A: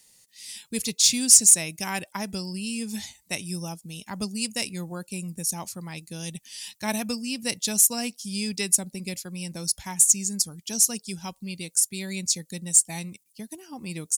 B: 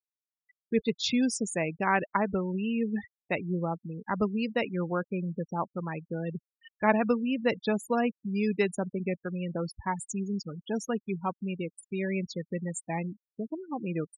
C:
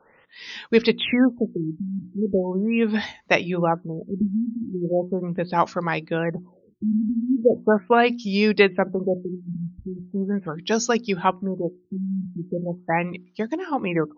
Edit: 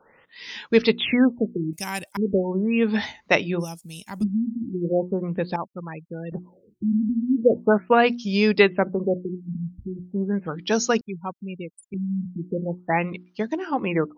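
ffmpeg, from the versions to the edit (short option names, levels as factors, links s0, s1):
-filter_complex "[0:a]asplit=2[s0][s1];[1:a]asplit=2[s2][s3];[2:a]asplit=5[s4][s5][s6][s7][s8];[s4]atrim=end=1.732[s9];[s0]atrim=start=1.728:end=2.172[s10];[s5]atrim=start=2.168:end=3.65[s11];[s1]atrim=start=3.59:end=4.24[s12];[s6]atrim=start=4.18:end=5.562[s13];[s2]atrim=start=5.558:end=6.322[s14];[s7]atrim=start=6.318:end=11.012[s15];[s3]atrim=start=11.008:end=11.942[s16];[s8]atrim=start=11.938[s17];[s9][s10]acrossfade=d=0.004:c1=hsin:c2=hsin[s18];[s18][s11]acrossfade=d=0.004:c1=hsin:c2=hsin[s19];[s19][s12]acrossfade=d=0.06:c1=tri:c2=tri[s20];[s20][s13]acrossfade=d=0.06:c1=tri:c2=tri[s21];[s21][s14]acrossfade=d=0.004:c1=hsin:c2=hsin[s22];[s22][s15]acrossfade=d=0.004:c1=hsin:c2=hsin[s23];[s23][s16]acrossfade=d=0.004:c1=hsin:c2=hsin[s24];[s24][s17]acrossfade=d=0.004:c1=hsin:c2=hsin"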